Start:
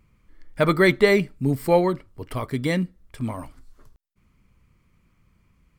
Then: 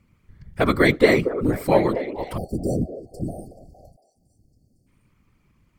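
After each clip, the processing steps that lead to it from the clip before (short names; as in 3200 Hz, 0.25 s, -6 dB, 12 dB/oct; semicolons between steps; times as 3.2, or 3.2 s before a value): delay with a stepping band-pass 0.231 s, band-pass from 450 Hz, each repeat 0.7 oct, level -8 dB; whisperiser; spectral delete 2.37–4.87, 810–4300 Hz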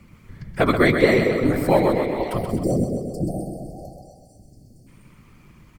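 flange 1.8 Hz, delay 4.9 ms, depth 3.7 ms, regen -62%; feedback echo 0.129 s, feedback 50%, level -7 dB; three-band squash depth 40%; gain +5 dB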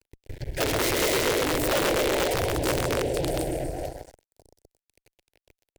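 fuzz box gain 32 dB, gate -41 dBFS; fixed phaser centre 490 Hz, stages 4; wrapped overs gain 11 dB; gain -7 dB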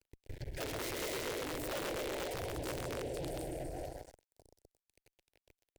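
limiter -26 dBFS, peak gain reduction 8 dB; gain -7 dB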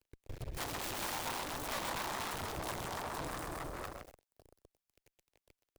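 self-modulated delay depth 0.79 ms; gain +1 dB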